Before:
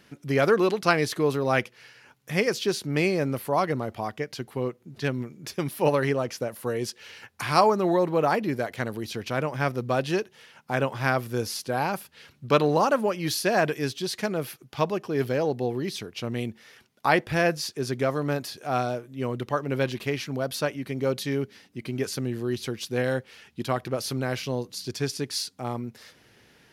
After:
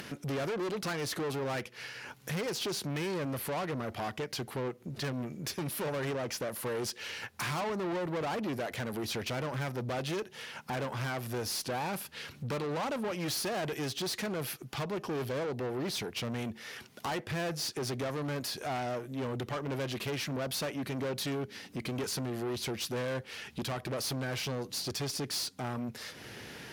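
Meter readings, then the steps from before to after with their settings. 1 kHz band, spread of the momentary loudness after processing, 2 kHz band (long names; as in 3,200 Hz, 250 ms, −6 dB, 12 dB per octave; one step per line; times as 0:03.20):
−10.5 dB, 5 LU, −8.5 dB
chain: downward compressor 3 to 1, threshold −29 dBFS, peak gain reduction 11.5 dB
tube saturation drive 37 dB, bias 0.35
high-pass filter 57 Hz
upward compression, threshold −43 dBFS
level +5.5 dB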